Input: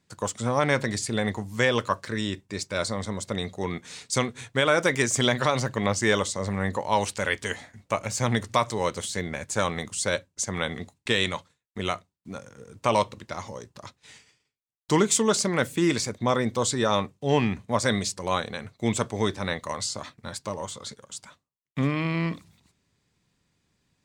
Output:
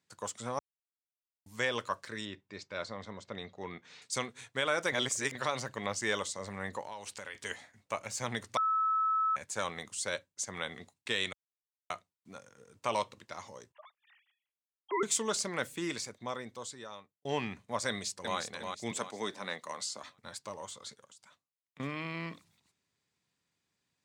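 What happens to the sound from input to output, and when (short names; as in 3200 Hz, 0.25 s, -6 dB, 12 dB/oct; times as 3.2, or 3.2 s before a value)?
0.59–1.46 mute
2.25–4.02 air absorption 160 m
4.92–5.35 reverse
6.81–7.35 compressor 12:1, threshold -29 dBFS
8.57–9.36 bleep 1300 Hz -18 dBFS
11.33–11.9 mute
13.72–15.03 sine-wave speech
15.65–17.25 fade out
17.88–18.38 echo throw 0.36 s, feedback 40%, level -5 dB
18.91–20.03 HPF 150 Hz 24 dB/oct
21.06–21.8 compressor 10:1, threshold -46 dBFS
whole clip: HPF 75 Hz; low shelf 390 Hz -9 dB; gain -7.5 dB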